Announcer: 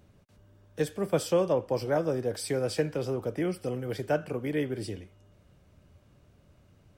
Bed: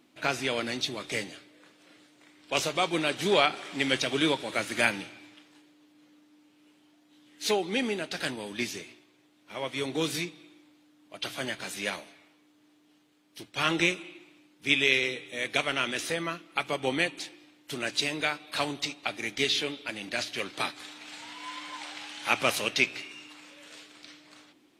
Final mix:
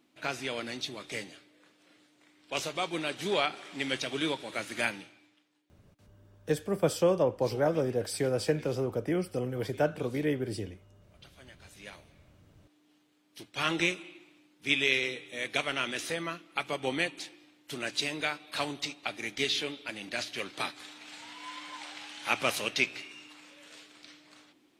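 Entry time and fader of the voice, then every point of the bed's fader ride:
5.70 s, 0.0 dB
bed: 4.86 s -5.5 dB
5.75 s -21 dB
11.41 s -21 dB
12.78 s -3 dB

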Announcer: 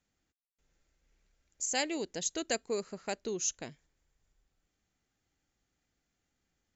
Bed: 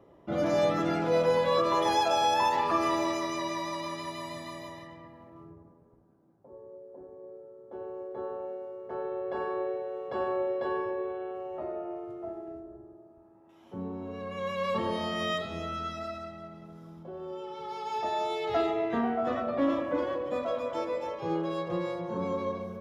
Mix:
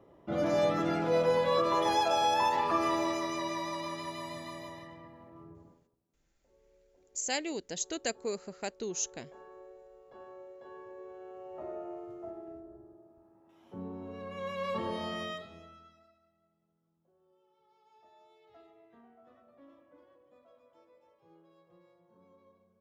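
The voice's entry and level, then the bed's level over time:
5.55 s, -1.0 dB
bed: 5.71 s -2 dB
5.98 s -19.5 dB
10.60 s -19.5 dB
11.71 s -4.5 dB
15.14 s -4.5 dB
16.18 s -31 dB

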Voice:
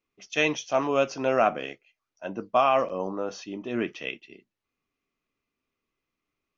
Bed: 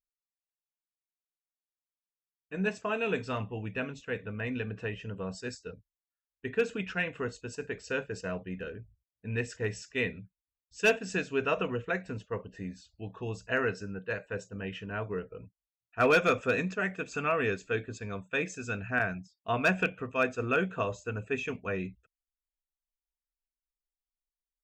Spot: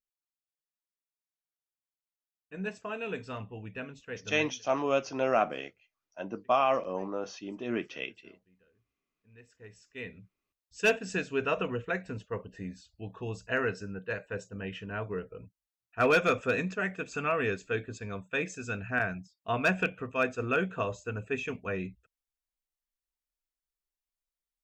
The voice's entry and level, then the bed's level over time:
3.95 s, -4.0 dB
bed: 4.41 s -5.5 dB
4.63 s -29.5 dB
9.10 s -29.5 dB
10.49 s -0.5 dB

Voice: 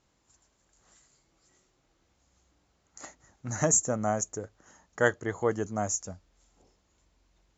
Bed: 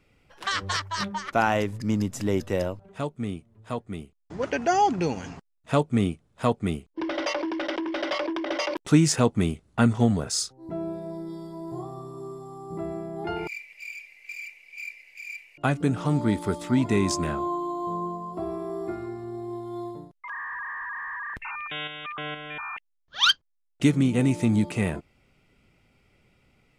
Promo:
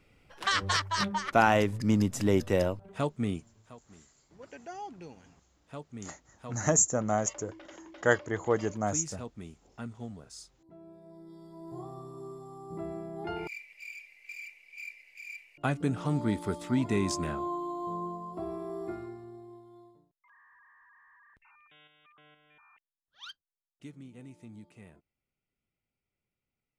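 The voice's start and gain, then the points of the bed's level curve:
3.05 s, 0.0 dB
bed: 3.46 s 0 dB
3.76 s -20.5 dB
10.80 s -20.5 dB
11.88 s -5.5 dB
18.96 s -5.5 dB
20.17 s -26.5 dB

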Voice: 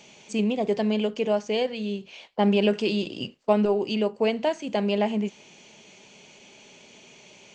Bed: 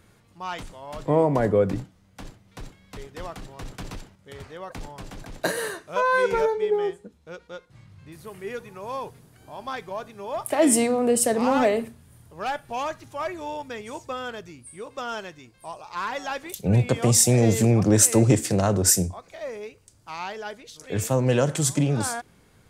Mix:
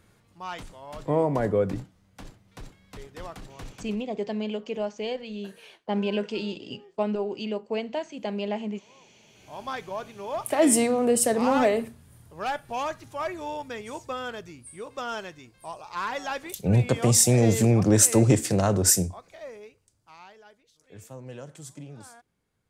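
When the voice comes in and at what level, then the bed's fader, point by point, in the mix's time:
3.50 s, -6.0 dB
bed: 3.68 s -3.5 dB
4.23 s -27 dB
9.00 s -27 dB
9.55 s -1 dB
18.95 s -1 dB
20.64 s -20 dB

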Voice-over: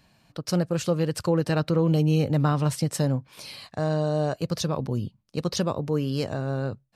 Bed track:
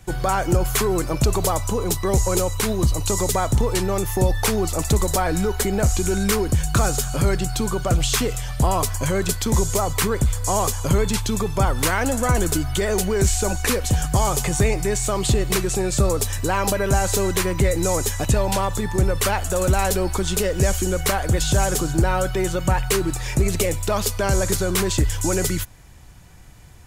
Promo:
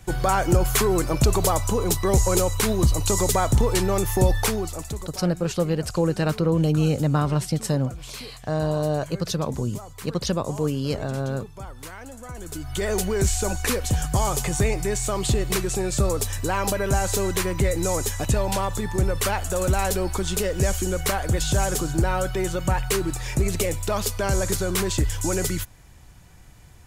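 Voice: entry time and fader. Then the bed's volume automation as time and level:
4.70 s, +1.0 dB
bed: 4.36 s 0 dB
5.19 s -18.5 dB
12.35 s -18.5 dB
12.85 s -3 dB

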